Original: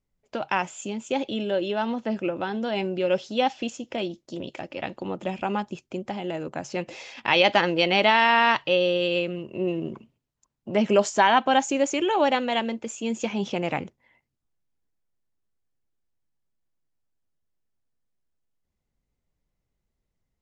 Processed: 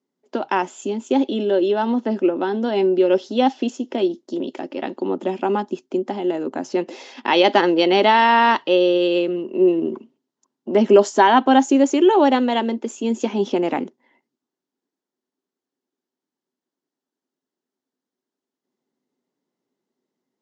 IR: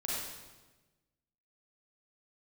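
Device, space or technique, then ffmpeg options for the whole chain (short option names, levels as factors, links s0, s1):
television speaker: -af "highpass=f=200:w=0.5412,highpass=f=200:w=1.3066,equalizer=f=260:t=q:w=4:g=10,equalizer=f=380:t=q:w=4:g=10,equalizer=f=900:t=q:w=4:g=4,equalizer=f=2400:t=q:w=4:g=-7,lowpass=f=7200:w=0.5412,lowpass=f=7200:w=1.3066,volume=1.33"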